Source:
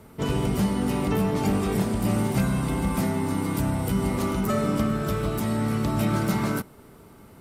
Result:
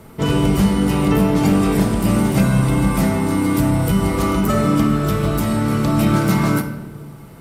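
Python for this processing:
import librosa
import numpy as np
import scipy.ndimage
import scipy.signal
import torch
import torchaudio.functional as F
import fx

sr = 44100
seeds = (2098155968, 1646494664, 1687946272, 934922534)

y = fx.room_shoebox(x, sr, seeds[0], volume_m3=660.0, walls='mixed', distance_m=0.69)
y = y * 10.0 ** (6.5 / 20.0)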